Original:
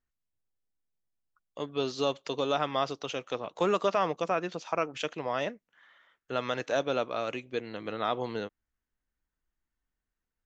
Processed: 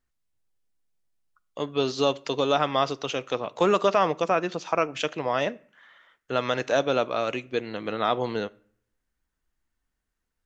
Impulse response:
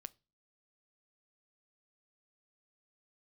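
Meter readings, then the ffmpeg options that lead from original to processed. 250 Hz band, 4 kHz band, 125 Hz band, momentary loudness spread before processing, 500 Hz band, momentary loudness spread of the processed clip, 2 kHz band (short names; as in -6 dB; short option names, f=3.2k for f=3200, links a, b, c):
+5.5 dB, +5.5 dB, +6.0 dB, 9 LU, +5.5 dB, 9 LU, +5.5 dB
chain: -filter_complex "[0:a]asplit=2[a][b];[1:a]atrim=start_sample=2205,asetrate=22050,aresample=44100[c];[b][c]afir=irnorm=-1:irlink=0,volume=1.5dB[d];[a][d]amix=inputs=2:normalize=0"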